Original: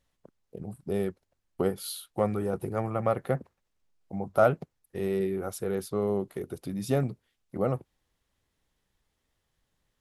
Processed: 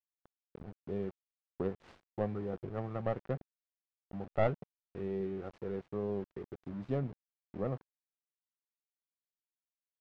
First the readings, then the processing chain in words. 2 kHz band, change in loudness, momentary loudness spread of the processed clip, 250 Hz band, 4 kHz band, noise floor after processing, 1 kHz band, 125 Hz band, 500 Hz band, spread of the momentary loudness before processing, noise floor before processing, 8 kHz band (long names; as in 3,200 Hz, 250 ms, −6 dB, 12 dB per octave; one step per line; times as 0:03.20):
−9.0 dB, −8.0 dB, 15 LU, −7.5 dB, below −15 dB, below −85 dBFS, −10.0 dB, −6.5 dB, −8.5 dB, 14 LU, −79 dBFS, below −30 dB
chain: stylus tracing distortion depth 0.31 ms
centre clipping without the shift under −37.5 dBFS
head-to-tape spacing loss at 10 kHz 35 dB
level −7 dB